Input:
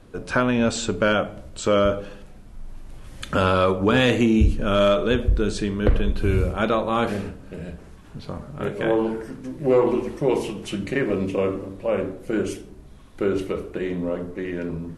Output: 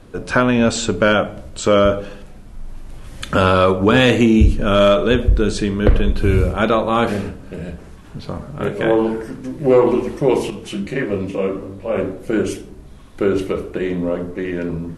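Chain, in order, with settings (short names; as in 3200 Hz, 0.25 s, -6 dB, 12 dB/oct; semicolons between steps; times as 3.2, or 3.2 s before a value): 10.5–11.96 detuned doubles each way 27 cents; gain +5.5 dB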